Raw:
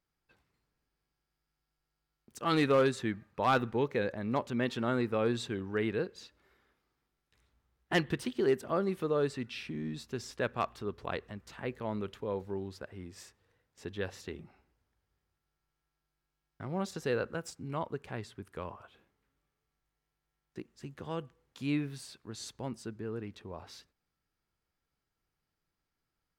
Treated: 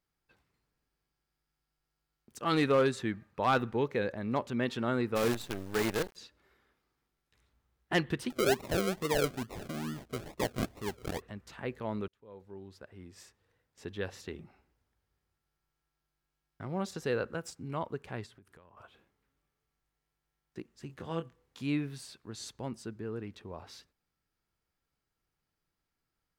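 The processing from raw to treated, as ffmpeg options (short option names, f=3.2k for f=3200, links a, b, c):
-filter_complex "[0:a]asplit=3[a][b][c];[a]afade=t=out:st=5.15:d=0.02[d];[b]acrusher=bits=6:dc=4:mix=0:aa=0.000001,afade=t=in:st=5.15:d=0.02,afade=t=out:st=6.15:d=0.02[e];[c]afade=t=in:st=6.15:d=0.02[f];[d][e][f]amix=inputs=3:normalize=0,asettb=1/sr,asplit=3[g][h][i];[g]atrim=end=8.304[j];[h]atrim=start=8.3:end=11.22,asetpts=PTS-STARTPTS,afade=t=in:d=0.004:c=qsin,afade=t=out:st=2.916:d=0.004:c=qsin,acrusher=samples=39:mix=1:aa=0.000001:lfo=1:lforange=23.4:lforate=2.3[k];[i]atrim=start=11.216[l];[j][k]acrossfade=d=0.004:c1=hsin:c2=qsin[m];[m][l]acrossfade=d=0.004:c1=qsin:c2=hsin,asettb=1/sr,asplit=3[n][o][p];[n]atrim=end=18.264[q];[o]atrim=start=18.26:end=18.77,asetpts=PTS-STARTPTS,afade=t=in:d=0.004:c=qsin,afade=t=out:st=0.506:d=0.004:c=qsin,acompressor=threshold=-54dB:ratio=10:attack=3.2:release=140:knee=1:detection=peak[r];[p]atrim=start=18.766[s];[q][r]acrossfade=d=0.004:c1=hsin:c2=qsin[t];[t][s]acrossfade=d=0.004:c1=qsin:c2=hsin,asettb=1/sr,asplit=3[u][v][w];[u]atrim=end=20.874[x];[v]atrim=start=20.87:end=21.62,asetpts=PTS-STARTPTS,afade=t=in:d=0.004:c=qsin,afade=t=out:st=0.746:d=0.004:c=qsin,asplit=2[y][z];[z]adelay=24,volume=-6dB[aa];[y][aa]amix=inputs=2:normalize=0,atrim=end_sample=33075[ab];[w]atrim=start=21.616[ac];[x][ab]acrossfade=d=0.004:c1=hsin:c2=qsin[ad];[ad][ac]acrossfade=d=0.004:c1=qsin:c2=hsin,asplit=2[ae][af];[ae]atrim=end=12.08,asetpts=PTS-STARTPTS,afade=t=out:st=12.076:d=0.004:c=hsin[ag];[af]atrim=start=12.08,asetpts=PTS-STARTPTS,afade=t=in:d=2.25:c=qsin[ah];[ag][ah]concat=n=2:v=0:a=1"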